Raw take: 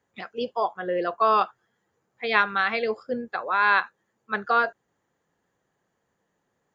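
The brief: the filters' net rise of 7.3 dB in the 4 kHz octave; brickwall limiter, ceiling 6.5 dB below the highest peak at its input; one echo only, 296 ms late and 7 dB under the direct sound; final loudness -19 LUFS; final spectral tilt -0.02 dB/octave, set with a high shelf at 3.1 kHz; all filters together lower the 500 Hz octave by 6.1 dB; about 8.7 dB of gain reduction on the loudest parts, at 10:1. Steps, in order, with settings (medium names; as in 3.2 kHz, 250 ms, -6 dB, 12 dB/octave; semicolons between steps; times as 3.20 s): peaking EQ 500 Hz -8 dB; treble shelf 3.1 kHz +8.5 dB; peaking EQ 4 kHz +3 dB; compression 10:1, threshold -22 dBFS; peak limiter -18 dBFS; delay 296 ms -7 dB; trim +11 dB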